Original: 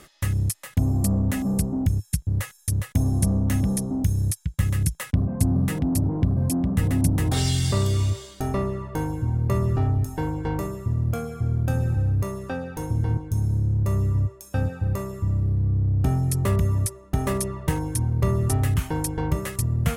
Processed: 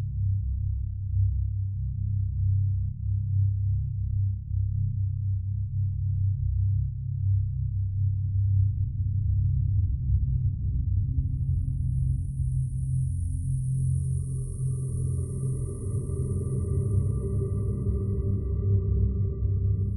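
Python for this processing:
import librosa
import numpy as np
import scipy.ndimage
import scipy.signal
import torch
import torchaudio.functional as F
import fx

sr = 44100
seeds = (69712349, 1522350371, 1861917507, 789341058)

y = fx.envelope_sharpen(x, sr, power=3.0)
y = fx.dynamic_eq(y, sr, hz=190.0, q=1.0, threshold_db=-37.0, ratio=4.0, max_db=-4)
y = fx.paulstretch(y, sr, seeds[0], factor=16.0, window_s=0.5, from_s=15.39)
y = y * 10.0 ** (-3.5 / 20.0)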